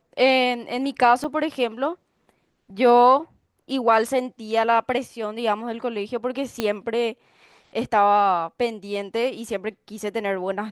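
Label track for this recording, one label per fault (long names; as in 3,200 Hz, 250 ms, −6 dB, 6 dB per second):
1.240000	1.240000	drop-out 4.6 ms
6.600000	6.600000	click −9 dBFS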